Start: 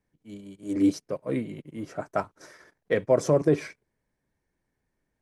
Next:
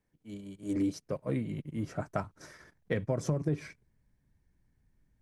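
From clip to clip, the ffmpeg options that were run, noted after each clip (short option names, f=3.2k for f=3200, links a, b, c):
-af "asubboost=boost=5.5:cutoff=200,acompressor=threshold=-26dB:ratio=5,volume=-1.5dB"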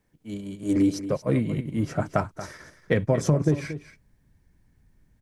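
-af "aecho=1:1:231:0.224,volume=9dB"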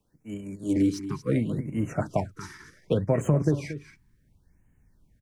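-filter_complex "[0:a]acrossover=split=260|1100|4300[a][b][c][d];[a]asplit=2[e][f];[f]adelay=42,volume=-12dB[g];[e][g]amix=inputs=2:normalize=0[h];[d]asoftclip=type=tanh:threshold=-35dB[i];[h][b][c][i]amix=inputs=4:normalize=0,afftfilt=real='re*(1-between(b*sr/1024,550*pow(4500/550,0.5+0.5*sin(2*PI*0.69*pts/sr))/1.41,550*pow(4500/550,0.5+0.5*sin(2*PI*0.69*pts/sr))*1.41))':imag='im*(1-between(b*sr/1024,550*pow(4500/550,0.5+0.5*sin(2*PI*0.69*pts/sr))/1.41,550*pow(4500/550,0.5+0.5*sin(2*PI*0.69*pts/sr))*1.41))':win_size=1024:overlap=0.75,volume=-1.5dB"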